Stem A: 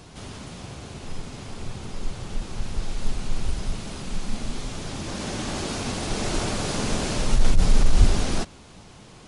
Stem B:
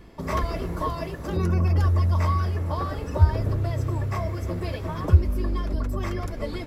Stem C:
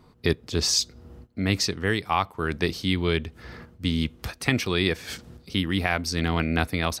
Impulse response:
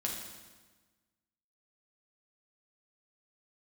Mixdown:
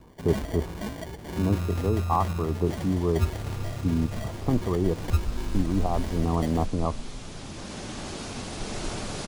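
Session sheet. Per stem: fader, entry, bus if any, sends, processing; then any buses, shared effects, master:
−6.5 dB, 2.50 s, no send, no processing
−8.0 dB, 0.00 s, no send, high-shelf EQ 2,100 Hz +11.5 dB; decimation without filtering 34×
0.0 dB, 0.00 s, no send, Butterworth low-pass 1,200 Hz 96 dB per octave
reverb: not used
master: no processing

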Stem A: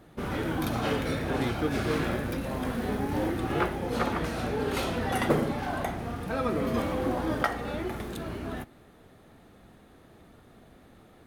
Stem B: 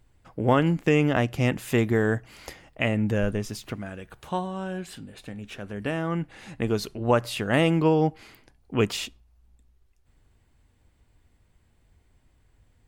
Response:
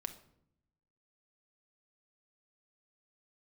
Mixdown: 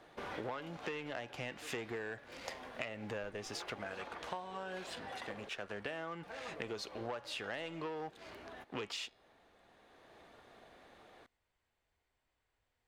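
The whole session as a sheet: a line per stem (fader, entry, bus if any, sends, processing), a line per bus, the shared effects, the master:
+0.5 dB, 0.00 s, muted 0:05.49–0:06.23, no send, downward compressor 6 to 1, threshold −34 dBFS, peak gain reduction 15 dB; notch filter 1,300 Hz, Q 12; automatic ducking −7 dB, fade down 1.35 s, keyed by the second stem
−6.5 dB, 0.00 s, no send, hum removal 281.6 Hz, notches 18; leveller curve on the samples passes 2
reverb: not used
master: three-way crossover with the lows and the highs turned down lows −16 dB, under 440 Hz, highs −15 dB, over 7,000 Hz; downward compressor 16 to 1, threshold −38 dBFS, peak gain reduction 17.5 dB

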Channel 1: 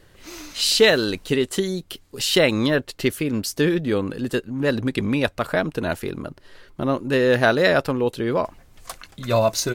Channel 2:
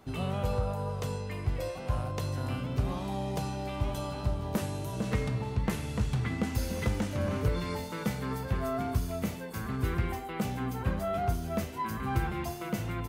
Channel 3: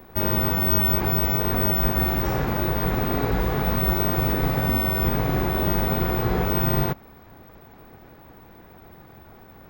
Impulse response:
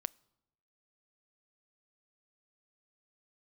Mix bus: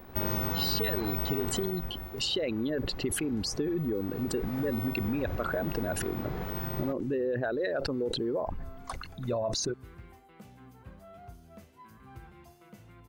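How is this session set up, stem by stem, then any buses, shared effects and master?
−4.0 dB, 0.00 s, bus A, no send, spectral envelope exaggerated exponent 2; low-pass filter 8,500 Hz; level that may fall only so fast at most 60 dB per second
−19.0 dB, 0.00 s, bus A, no send, log-companded quantiser 8 bits
0:01.49 −3 dB → 0:01.93 −15 dB → 0:03.94 −15 dB → 0:04.60 −6 dB, 0.00 s, no bus, no send, automatic ducking −7 dB, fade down 1.80 s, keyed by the first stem
bus A: 0.0 dB, downward compressor, threshold −23 dBFS, peak gain reduction 9 dB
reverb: not used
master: downward compressor 2.5 to 1, threshold −29 dBFS, peak gain reduction 7 dB

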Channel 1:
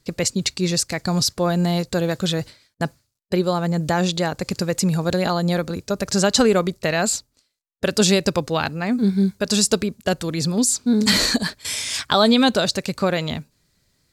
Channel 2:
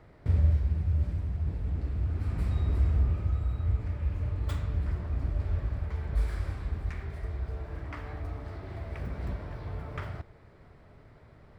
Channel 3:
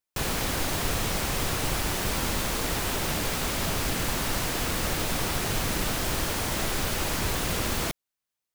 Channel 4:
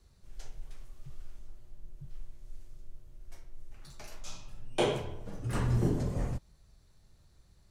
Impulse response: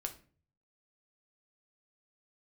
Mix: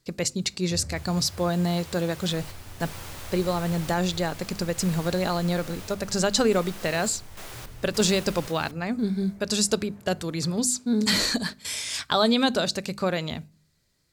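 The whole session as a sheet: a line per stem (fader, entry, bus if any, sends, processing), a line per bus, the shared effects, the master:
−6.5 dB, 0.00 s, send −13.5 dB, mains-hum notches 50/100/150/200/250 Hz
+0.5 dB, 0.45 s, no send, high-pass filter 92 Hz 24 dB per octave; automatic ducking −12 dB, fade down 1.30 s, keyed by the first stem
−10.5 dB, 0.80 s, no send, high-pass filter 380 Hz; sample-and-hold tremolo, depth 75%
−14.5 dB, 2.10 s, no send, spectral tilt −3 dB per octave; downward compressor, threshold −26 dBFS, peak gain reduction 14.5 dB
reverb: on, RT60 0.40 s, pre-delay 6 ms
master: no processing

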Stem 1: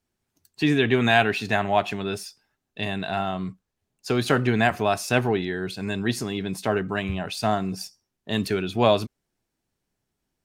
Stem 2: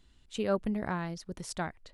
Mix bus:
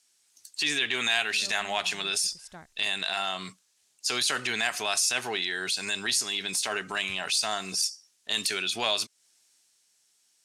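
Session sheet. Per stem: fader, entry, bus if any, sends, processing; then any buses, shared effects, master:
+1.5 dB, 0.00 s, no send, meter weighting curve ITU-R 468; transient designer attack −7 dB, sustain +2 dB
−12.5 dB, 0.95 s, no send, no processing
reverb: not used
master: high-shelf EQ 4,500 Hz +10.5 dB; downward compressor 2.5 to 1, threshold −28 dBFS, peak gain reduction 13.5 dB

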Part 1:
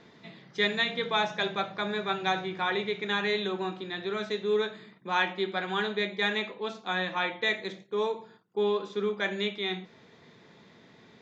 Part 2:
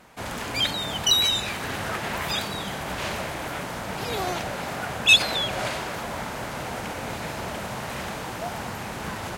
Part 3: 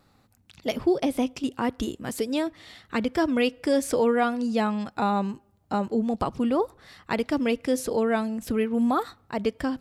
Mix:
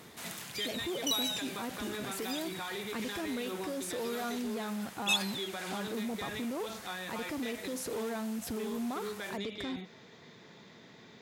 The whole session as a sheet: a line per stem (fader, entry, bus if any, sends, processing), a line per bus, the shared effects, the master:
+0.5 dB, 0.00 s, bus A, no send, high-shelf EQ 6,400 Hz +10.5 dB; downward compressor, threshold −31 dBFS, peak gain reduction 11 dB
−9.5 dB, 0.00 s, no bus, no send, spectral tilt +4.5 dB per octave; automatic ducking −12 dB, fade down 0.60 s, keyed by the third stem
+0.5 dB, 0.00 s, bus A, no send, brickwall limiter −21 dBFS, peak gain reduction 9 dB
bus A: 0.0 dB, soft clipping −23.5 dBFS, distortion −16 dB; brickwall limiter −31.5 dBFS, peak gain reduction 8 dB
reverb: not used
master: high-pass filter 70 Hz

